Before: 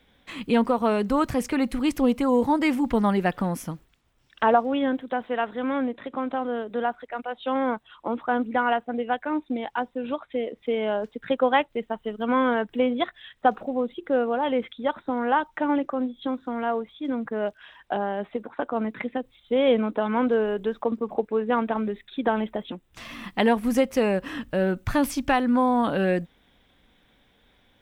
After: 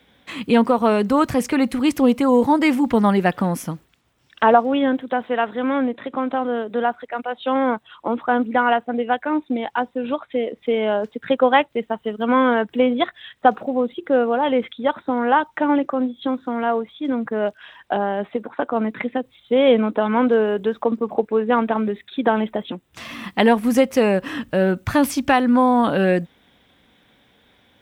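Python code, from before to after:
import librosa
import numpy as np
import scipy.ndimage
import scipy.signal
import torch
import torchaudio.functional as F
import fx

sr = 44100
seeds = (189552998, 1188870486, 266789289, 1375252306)

y = scipy.signal.sosfilt(scipy.signal.butter(2, 80.0, 'highpass', fs=sr, output='sos'), x)
y = F.gain(torch.from_numpy(y), 5.5).numpy()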